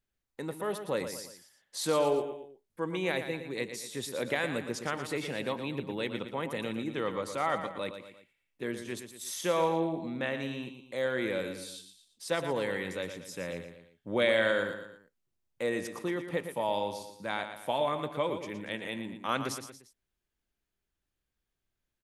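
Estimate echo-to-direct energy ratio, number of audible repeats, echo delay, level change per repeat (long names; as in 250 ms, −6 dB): −8.0 dB, 3, 116 ms, −7.0 dB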